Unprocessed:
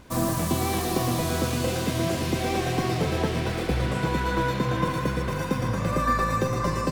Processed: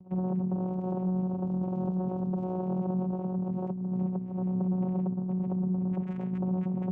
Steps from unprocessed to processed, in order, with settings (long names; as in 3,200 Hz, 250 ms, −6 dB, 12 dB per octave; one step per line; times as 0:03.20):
spectral envelope exaggerated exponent 3
in parallel at −3 dB: soft clipping −29 dBFS, distortion −9 dB
on the sum: brickwall limiter −22.5 dBFS, peak gain reduction 11 dB
flat-topped bell 900 Hz −13 dB
channel vocoder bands 4, saw 184 Hz